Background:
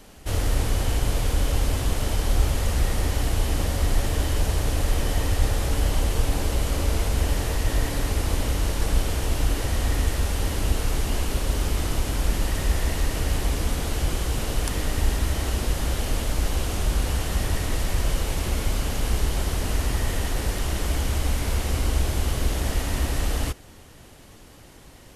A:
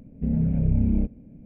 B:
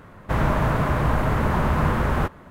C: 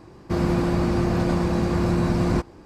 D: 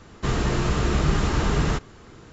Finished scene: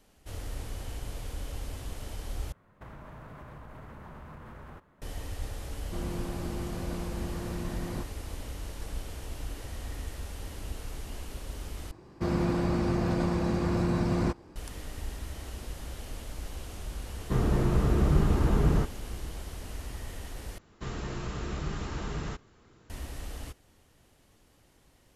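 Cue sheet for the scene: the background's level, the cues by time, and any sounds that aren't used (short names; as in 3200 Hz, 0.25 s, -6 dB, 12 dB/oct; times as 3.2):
background -15 dB
2.52 replace with B -17.5 dB + compressor, threshold -25 dBFS
5.62 add C -15.5 dB
11.91 replace with C -6 dB
17.07 add D -9.5 dB + tilt shelf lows +8 dB, about 1400 Hz
20.58 replace with D -13 dB
not used: A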